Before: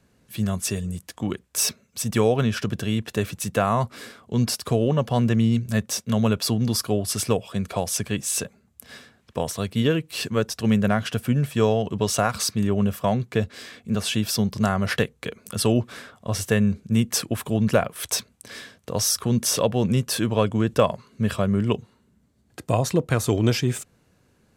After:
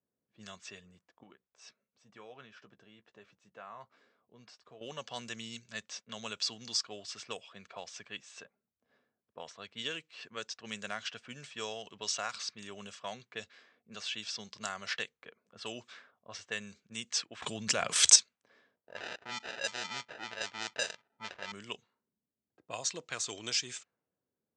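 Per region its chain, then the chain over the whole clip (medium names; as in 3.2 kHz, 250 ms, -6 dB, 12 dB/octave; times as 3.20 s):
1.23–4.81 s: treble shelf 2.3 kHz +6.5 dB + compression 1.5:1, threshold -43 dBFS + doubling 15 ms -10.5 dB
17.42–18.16 s: bass shelf 270 Hz +10 dB + level flattener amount 70%
18.76–21.52 s: bass shelf 68 Hz +5.5 dB + sample-rate reducer 1.1 kHz + overdrive pedal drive 5 dB, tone 3.7 kHz, clips at -7 dBFS
whole clip: steep low-pass 7.7 kHz 48 dB/octave; level-controlled noise filter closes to 450 Hz, open at -16 dBFS; differentiator; trim +2 dB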